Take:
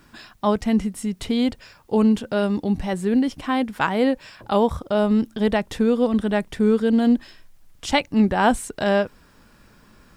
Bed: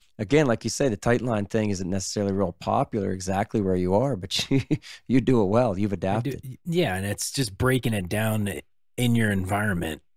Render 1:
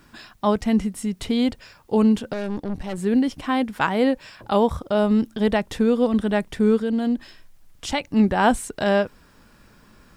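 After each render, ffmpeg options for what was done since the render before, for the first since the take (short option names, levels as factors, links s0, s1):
-filter_complex "[0:a]asettb=1/sr,asplit=3[s0][s1][s2];[s0]atrim=end=2.334[s3];[s1]atrim=start=2.33:end=2.98,asetpts=PTS-STARTPTS,afade=t=in:d=0.004:c=qsin,afade=t=out:st=0.646:d=0.004:c=qsin,aeval=exprs='(tanh(15.8*val(0)+0.7)-tanh(0.7))/15.8':c=same[s4];[s2]atrim=start=2.976[s5];[s3][s4]acrossfade=d=0.004:c1=hsin:c2=qsin[s6];[s6][s5]acrossfade=d=0.004:c1=qsin:c2=hsin,asplit=3[s7][s8][s9];[s7]afade=t=out:st=6.77:d=0.02[s10];[s8]acompressor=threshold=0.0447:ratio=1.5:attack=3.2:release=140:knee=1:detection=peak,afade=t=in:st=6.77:d=0.02,afade=t=out:st=8.04:d=0.02[s11];[s9]afade=t=in:st=8.04:d=0.02[s12];[s10][s11][s12]amix=inputs=3:normalize=0"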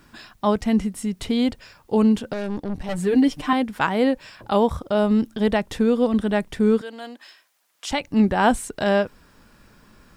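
-filter_complex "[0:a]asettb=1/sr,asplit=3[s0][s1][s2];[s0]atrim=end=2.884[s3];[s1]atrim=start=2.88:end=3.53,asetpts=PTS-STARTPTS,afade=t=in:d=0.004:c=qsin,afade=t=out:st=0.646:d=0.004:c=qsin,aecho=1:1:6.7:0.98,atrim=end_sample=28665[s4];[s2]atrim=start=3.526[s5];[s3][s4]acrossfade=d=0.004:c1=hsin:c2=qsin[s6];[s6][s5]acrossfade=d=0.004:c1=qsin:c2=hsin,asettb=1/sr,asplit=3[s7][s8][s9];[s7]atrim=end=6.814[s10];[s8]atrim=start=6.81:end=7.91,asetpts=PTS-STARTPTS,afade=t=in:d=0.004:c=qsin,afade=t=out:st=1.096:d=0.004:c=qsin,highpass=720[s11];[s9]atrim=start=7.906[s12];[s10][s11]acrossfade=d=0.004:c1=hsin:c2=qsin[s13];[s13][s12]acrossfade=d=0.004:c1=qsin:c2=hsin"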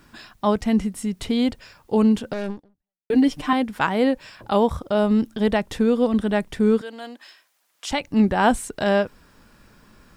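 -filter_complex "[0:a]asplit=2[s0][s1];[s0]atrim=end=3.1,asetpts=PTS-STARTPTS,afade=t=out:st=2.5:d=0.6:c=exp[s2];[s1]atrim=start=3.1,asetpts=PTS-STARTPTS,afade=t=in:d=0.004:c=hsin[s3];[s2][s3]concat=n=2:v=0:a=1"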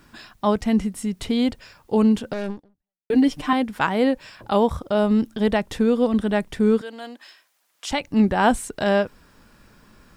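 -af anull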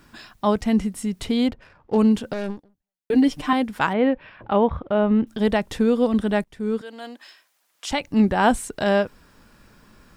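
-filter_complex "[0:a]asplit=3[s0][s1][s2];[s0]afade=t=out:st=1.47:d=0.02[s3];[s1]adynamicsmooth=sensitivity=7.5:basefreq=1400,afade=t=in:st=1.47:d=0.02,afade=t=out:st=1.97:d=0.02[s4];[s2]afade=t=in:st=1.97:d=0.02[s5];[s3][s4][s5]amix=inputs=3:normalize=0,asettb=1/sr,asplit=3[s6][s7][s8];[s6]atrim=end=3.934[s9];[s7]atrim=start=3.93:end=5.27,asetpts=PTS-STARTPTS,afade=t=in:d=0.004:c=qsin,afade=t=out:st=1.336:d=0.004:c=qsin,lowpass=f=2800:w=0.5412,lowpass=f=2800:w=1.3066[s10];[s8]atrim=start=5.266[s11];[s9][s10]acrossfade=d=0.004:c1=hsin:c2=qsin[s12];[s12][s11]acrossfade=d=0.004:c1=qsin:c2=hsin,asplit=2[s13][s14];[s13]atrim=end=6.44,asetpts=PTS-STARTPTS,afade=t=out:st=6.436:d=0.004:c=hsin:silence=0.0944061[s15];[s14]atrim=start=6.44,asetpts=PTS-STARTPTS,afade=t=in:d=0.63:silence=0.0944061[s16];[s15][s16]concat=n=2:v=0:a=1"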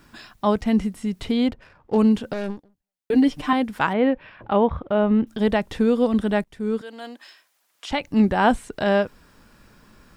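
-filter_complex "[0:a]acrossover=split=4300[s0][s1];[s1]acompressor=threshold=0.00562:ratio=4:attack=1:release=60[s2];[s0][s2]amix=inputs=2:normalize=0"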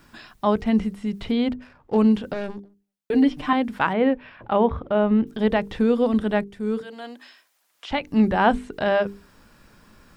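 -filter_complex "[0:a]acrossover=split=4500[s0][s1];[s1]acompressor=threshold=0.00141:ratio=4:attack=1:release=60[s2];[s0][s2]amix=inputs=2:normalize=0,bandreject=f=50:t=h:w=6,bandreject=f=100:t=h:w=6,bandreject=f=150:t=h:w=6,bandreject=f=200:t=h:w=6,bandreject=f=250:t=h:w=6,bandreject=f=300:t=h:w=6,bandreject=f=350:t=h:w=6,bandreject=f=400:t=h:w=6,bandreject=f=450:t=h:w=6"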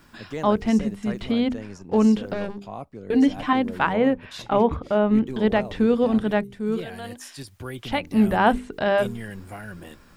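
-filter_complex "[1:a]volume=0.224[s0];[0:a][s0]amix=inputs=2:normalize=0"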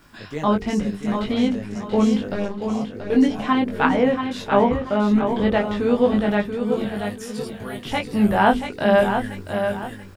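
-filter_complex "[0:a]asplit=2[s0][s1];[s1]adelay=20,volume=0.75[s2];[s0][s2]amix=inputs=2:normalize=0,aecho=1:1:683|1366|2049|2732:0.447|0.147|0.0486|0.0161"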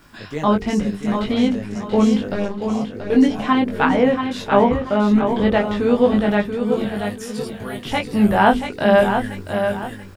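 -af "volume=1.33,alimiter=limit=0.794:level=0:latency=1"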